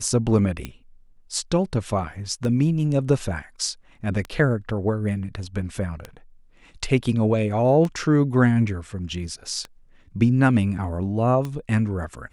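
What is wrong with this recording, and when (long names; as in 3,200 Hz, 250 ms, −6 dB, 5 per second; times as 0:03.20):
scratch tick 33 1/3 rpm −16 dBFS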